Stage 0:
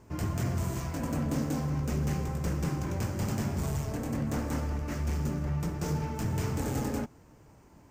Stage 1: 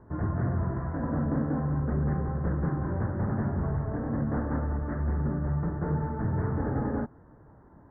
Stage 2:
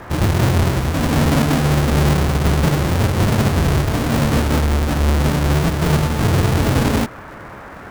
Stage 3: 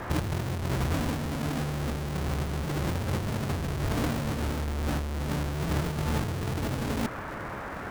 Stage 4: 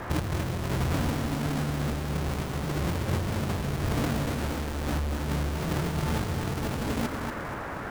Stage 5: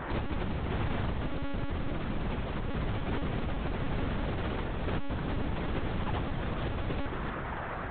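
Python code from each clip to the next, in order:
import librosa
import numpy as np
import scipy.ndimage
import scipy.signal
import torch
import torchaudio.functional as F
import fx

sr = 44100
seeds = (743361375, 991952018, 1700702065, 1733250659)

y1 = scipy.signal.sosfilt(scipy.signal.butter(12, 1800.0, 'lowpass', fs=sr, output='sos'), x)
y1 = y1 * librosa.db_to_amplitude(2.5)
y2 = fx.halfwave_hold(y1, sr)
y2 = fx.dmg_noise_band(y2, sr, seeds[0], low_hz=170.0, high_hz=1700.0, level_db=-45.0)
y2 = y2 * librosa.db_to_amplitude(8.5)
y3 = fx.over_compress(y2, sr, threshold_db=-22.0, ratio=-1.0)
y3 = y3 * librosa.db_to_amplitude(-7.5)
y4 = fx.echo_feedback(y3, sr, ms=239, feedback_pct=40, wet_db=-6.0)
y5 = 10.0 ** (-27.5 / 20.0) * np.tanh(y4 / 10.0 ** (-27.5 / 20.0))
y5 = fx.lpc_monotone(y5, sr, seeds[1], pitch_hz=280.0, order=10)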